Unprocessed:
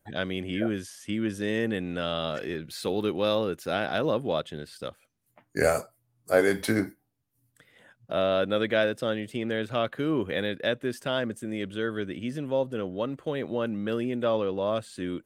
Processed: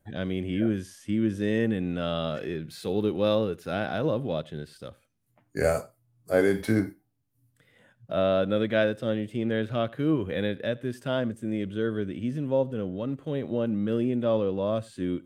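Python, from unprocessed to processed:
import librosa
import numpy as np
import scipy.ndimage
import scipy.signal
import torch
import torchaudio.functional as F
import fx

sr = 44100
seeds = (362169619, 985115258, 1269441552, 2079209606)

y = fx.hpss(x, sr, part='percussive', gain_db=-9)
y = fx.low_shelf(y, sr, hz=370.0, db=6.0)
y = y + 10.0 ** (-24.0 / 20.0) * np.pad(y, (int(89 * sr / 1000.0), 0))[:len(y)]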